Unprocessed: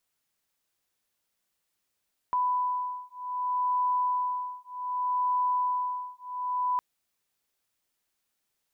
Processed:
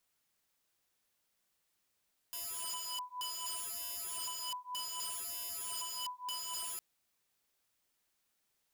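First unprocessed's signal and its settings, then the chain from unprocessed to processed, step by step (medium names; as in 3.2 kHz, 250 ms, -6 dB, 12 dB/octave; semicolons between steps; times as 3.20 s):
beating tones 995 Hz, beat 0.65 Hz, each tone -29 dBFS 4.46 s
integer overflow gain 36 dB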